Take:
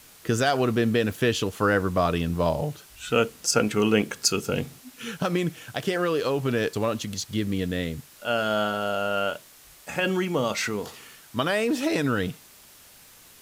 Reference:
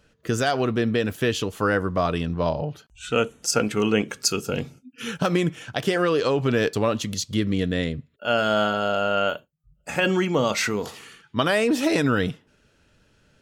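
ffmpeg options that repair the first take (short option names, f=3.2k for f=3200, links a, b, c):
-af "adeclick=t=4,afwtdn=0.0032,asetnsamples=n=441:p=0,asendcmd='4.96 volume volume 3.5dB',volume=0dB"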